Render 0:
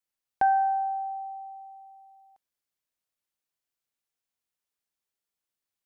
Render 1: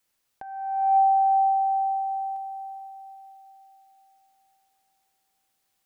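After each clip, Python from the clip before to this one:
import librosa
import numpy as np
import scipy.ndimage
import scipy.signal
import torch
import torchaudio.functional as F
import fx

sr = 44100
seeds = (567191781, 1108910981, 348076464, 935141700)

y = fx.over_compress(x, sr, threshold_db=-31.0, ratio=-0.5)
y = fx.echo_diffused(y, sr, ms=451, feedback_pct=46, wet_db=-7.5)
y = F.gain(torch.from_numpy(y), 8.5).numpy()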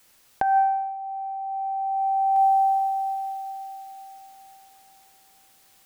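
y = fx.over_compress(x, sr, threshold_db=-34.0, ratio=-1.0)
y = F.gain(torch.from_numpy(y), 9.0).numpy()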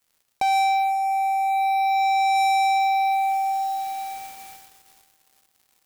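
y = fx.leveller(x, sr, passes=5)
y = F.gain(torch.from_numpy(y), -6.5).numpy()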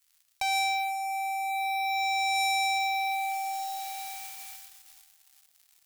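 y = fx.tone_stack(x, sr, knobs='10-0-10')
y = F.gain(torch.from_numpy(y), 2.5).numpy()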